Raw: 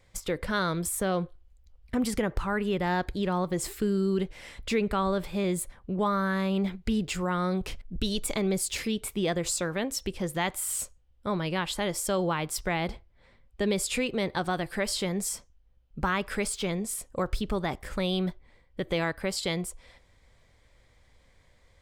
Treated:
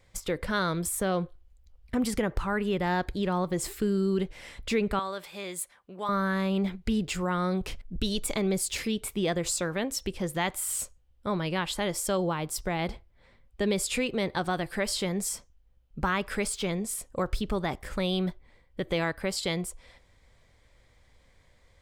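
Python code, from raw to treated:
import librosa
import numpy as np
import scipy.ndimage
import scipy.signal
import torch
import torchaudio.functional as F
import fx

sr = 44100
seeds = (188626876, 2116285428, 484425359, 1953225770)

y = fx.highpass(x, sr, hz=1200.0, slope=6, at=(4.99, 6.09))
y = fx.peak_eq(y, sr, hz=2100.0, db=-5.0, octaves=1.9, at=(12.17, 12.79))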